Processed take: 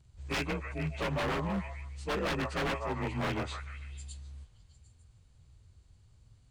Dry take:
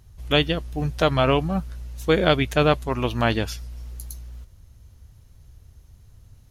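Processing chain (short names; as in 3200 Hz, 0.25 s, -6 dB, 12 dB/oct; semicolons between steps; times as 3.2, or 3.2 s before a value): inharmonic rescaling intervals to 89%; delay with a stepping band-pass 0.15 s, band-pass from 900 Hz, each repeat 0.7 oct, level -5.5 dB; wavefolder -19 dBFS; gain -7.5 dB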